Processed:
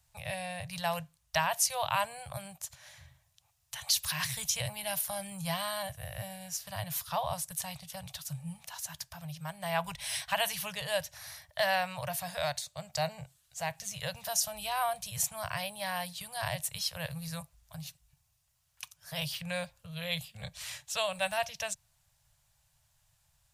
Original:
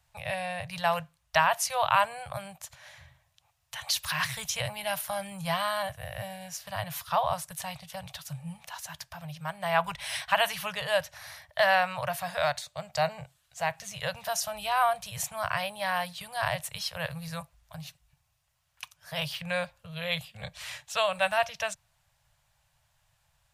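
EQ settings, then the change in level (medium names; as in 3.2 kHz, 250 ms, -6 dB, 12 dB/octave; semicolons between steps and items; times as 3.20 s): tone controls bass +5 dB, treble +9 dB; dynamic bell 1.3 kHz, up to -5 dB, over -44 dBFS, Q 2.8; -5.5 dB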